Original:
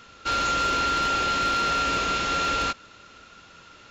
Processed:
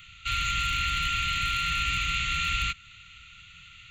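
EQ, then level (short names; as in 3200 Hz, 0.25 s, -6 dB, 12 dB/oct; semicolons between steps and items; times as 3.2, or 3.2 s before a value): elliptic band-stop 200–1700 Hz, stop band 50 dB; dynamic EQ 3300 Hz, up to -3 dB, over -43 dBFS, Q 1.2; fixed phaser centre 1100 Hz, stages 8; +7.0 dB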